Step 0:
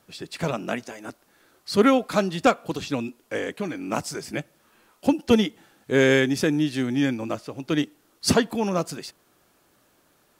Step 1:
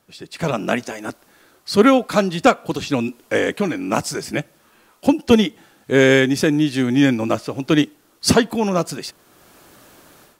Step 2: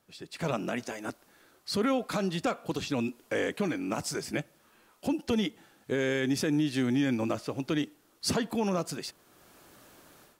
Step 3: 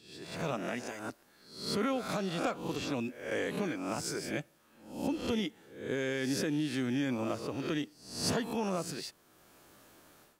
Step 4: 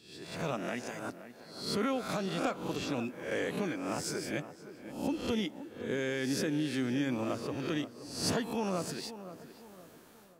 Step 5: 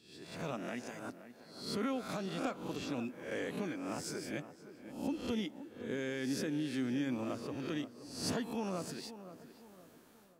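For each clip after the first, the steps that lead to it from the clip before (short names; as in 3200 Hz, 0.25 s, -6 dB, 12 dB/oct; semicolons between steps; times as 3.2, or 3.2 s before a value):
AGC gain up to 16 dB; gain -1 dB
limiter -11 dBFS, peak gain reduction 9.5 dB; gain -8 dB
spectral swells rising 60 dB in 0.58 s; gain -5.5 dB
tape echo 0.523 s, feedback 46%, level -11 dB, low-pass 1600 Hz
bell 250 Hz +3.5 dB 0.52 oct; gain -5.5 dB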